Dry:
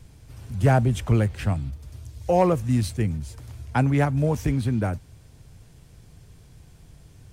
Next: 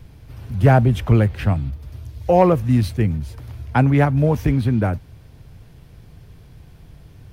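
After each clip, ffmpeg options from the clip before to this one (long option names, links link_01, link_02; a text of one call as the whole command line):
ffmpeg -i in.wav -af "equalizer=frequency=7700:width_type=o:width=1:gain=-12.5,volume=5.5dB" out.wav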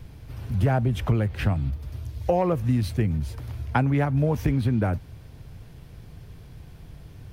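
ffmpeg -i in.wav -af "acompressor=threshold=-19dB:ratio=5" out.wav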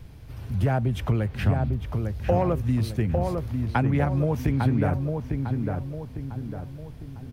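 ffmpeg -i in.wav -filter_complex "[0:a]asplit=2[link_01][link_02];[link_02]adelay=852,lowpass=frequency=1600:poles=1,volume=-4dB,asplit=2[link_03][link_04];[link_04]adelay=852,lowpass=frequency=1600:poles=1,volume=0.47,asplit=2[link_05][link_06];[link_06]adelay=852,lowpass=frequency=1600:poles=1,volume=0.47,asplit=2[link_07][link_08];[link_08]adelay=852,lowpass=frequency=1600:poles=1,volume=0.47,asplit=2[link_09][link_10];[link_10]adelay=852,lowpass=frequency=1600:poles=1,volume=0.47,asplit=2[link_11][link_12];[link_12]adelay=852,lowpass=frequency=1600:poles=1,volume=0.47[link_13];[link_01][link_03][link_05][link_07][link_09][link_11][link_13]amix=inputs=7:normalize=0,volume=-1.5dB" out.wav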